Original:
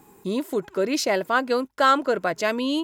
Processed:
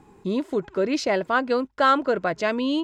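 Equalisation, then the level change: distance through air 110 m; bass shelf 93 Hz +11 dB; treble shelf 12 kHz +6.5 dB; 0.0 dB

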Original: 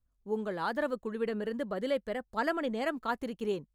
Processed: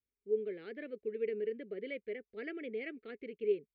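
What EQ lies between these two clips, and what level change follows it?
two resonant band-passes 970 Hz, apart 2.4 oct; distance through air 250 m; peaking EQ 850 Hz -11.5 dB 2.8 oct; +11.0 dB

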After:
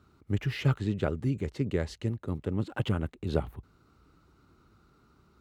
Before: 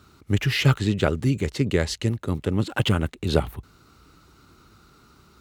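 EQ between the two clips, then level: treble shelf 2.1 kHz -10.5 dB; -7.0 dB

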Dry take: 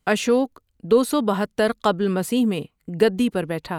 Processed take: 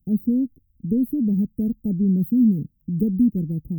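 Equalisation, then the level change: inverse Chebyshev band-stop 1.2–6.3 kHz, stop band 80 dB; treble shelf 6.6 kHz +11.5 dB; +6.5 dB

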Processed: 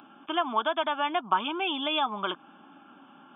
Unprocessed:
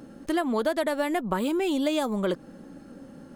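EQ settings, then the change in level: high-pass 600 Hz 12 dB/octave; brick-wall FIR low-pass 3.6 kHz; static phaser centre 1.9 kHz, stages 6; +8.0 dB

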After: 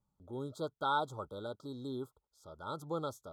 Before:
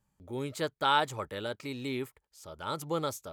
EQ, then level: brick-wall FIR band-stop 1.5–3.2 kHz; treble shelf 4 kHz -10.5 dB; -5.0 dB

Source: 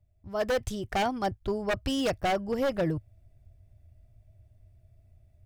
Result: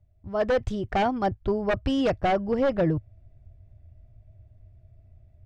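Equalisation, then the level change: tape spacing loss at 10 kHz 22 dB; +5.5 dB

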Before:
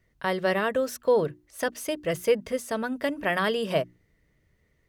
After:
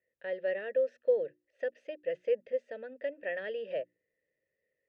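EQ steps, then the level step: vowel filter e; distance through air 140 m; -1.0 dB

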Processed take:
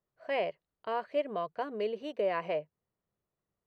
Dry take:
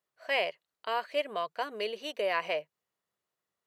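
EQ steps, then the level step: tilt EQ -4.5 dB/octave; -3.0 dB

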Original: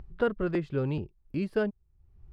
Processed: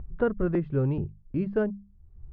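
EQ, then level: low-pass 1.7 kHz 12 dB/octave; bass shelf 200 Hz +9 dB; hum notches 50/100/150/200 Hz; 0.0 dB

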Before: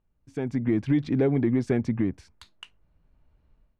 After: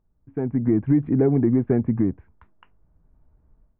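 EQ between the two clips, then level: Gaussian low-pass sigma 5.7 samples; band-stop 550 Hz, Q 12; +4.5 dB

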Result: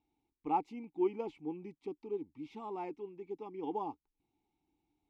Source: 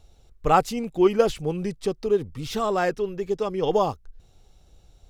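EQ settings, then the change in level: vowel filter u; dynamic bell 540 Hz, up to +7 dB, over -47 dBFS, Q 1.1; -5.0 dB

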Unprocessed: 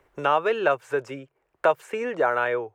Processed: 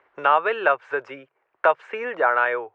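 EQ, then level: band-pass filter 1.5 kHz, Q 0.75; distance through air 140 m; +6.5 dB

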